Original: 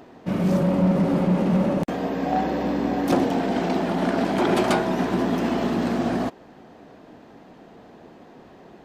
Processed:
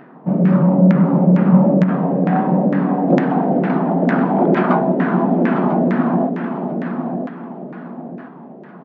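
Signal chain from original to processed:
bass and treble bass +12 dB, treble −9 dB
repeating echo 995 ms, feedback 36%, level −6 dB
auto-filter low-pass saw down 2.2 Hz 510–1,800 Hz
brick-wall band-pass 130–7,500 Hz
high-shelf EQ 2,100 Hz +11 dB
level −1 dB

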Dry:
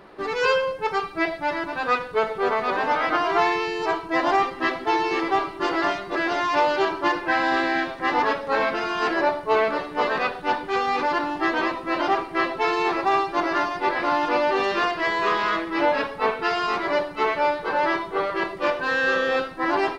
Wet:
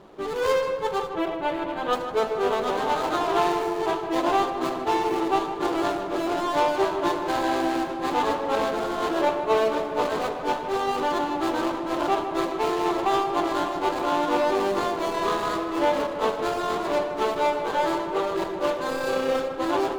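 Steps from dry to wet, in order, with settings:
running median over 25 samples
0:01.09–0:01.93: high shelf with overshoot 4,000 Hz −9 dB, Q 1.5
tape delay 155 ms, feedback 79%, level −8 dB, low-pass 2,400 Hz

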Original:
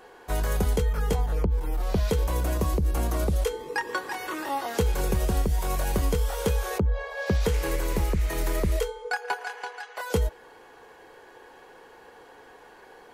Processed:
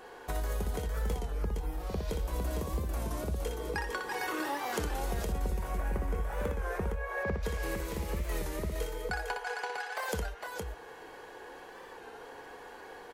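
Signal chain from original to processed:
0:05.32–0:07.43: high shelf with overshoot 2,700 Hz −10.5 dB, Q 1.5
downward compressor 6 to 1, threshold −33 dBFS, peak gain reduction 13 dB
multi-tap delay 61/455 ms −5.5/−4.5 dB
wow of a warped record 33 1/3 rpm, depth 100 cents

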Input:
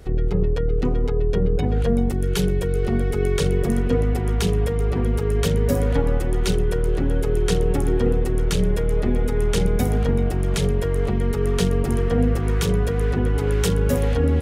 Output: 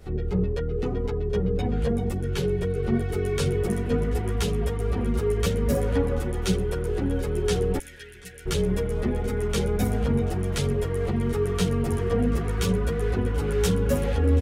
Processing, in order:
0:02.21–0:02.94: high-shelf EQ 6,400 Hz −10.5 dB
0:07.78–0:08.46: Butterworth high-pass 1,500 Hz 96 dB per octave
repeating echo 734 ms, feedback 29%, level −22.5 dB
string-ensemble chorus

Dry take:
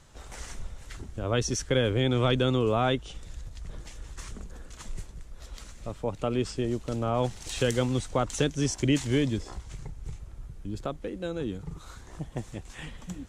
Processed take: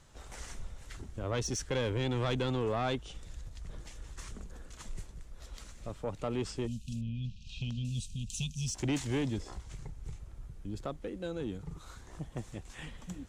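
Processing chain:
0:06.67–0:08.75: time-frequency box erased 250–2,400 Hz
soft clipping −21.5 dBFS, distortion −12 dB
0:07.01–0:07.85: high-frequency loss of the air 240 metres
level −4 dB

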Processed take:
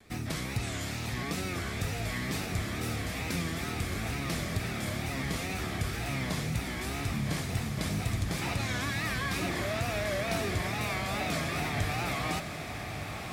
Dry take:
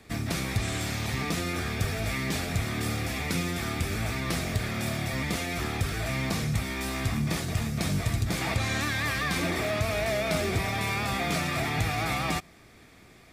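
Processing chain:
tape wow and flutter 130 cents
feedback delay with all-pass diffusion 1,119 ms, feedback 60%, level −7.5 dB
level −4.5 dB

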